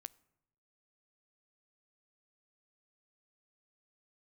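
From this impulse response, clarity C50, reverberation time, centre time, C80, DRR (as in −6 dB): 23.5 dB, 0.85 s, 2 ms, 25.5 dB, 19.0 dB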